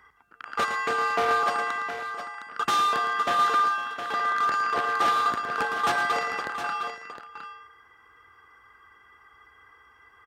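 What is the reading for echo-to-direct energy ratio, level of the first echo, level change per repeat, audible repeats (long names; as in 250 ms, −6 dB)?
−6.0 dB, −9.5 dB, repeats not evenly spaced, 3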